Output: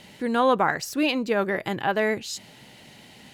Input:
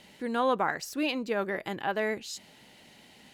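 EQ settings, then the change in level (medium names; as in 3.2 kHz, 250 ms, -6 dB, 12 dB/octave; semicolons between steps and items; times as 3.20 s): peaking EQ 120 Hz +7 dB 0.77 oct; +6.0 dB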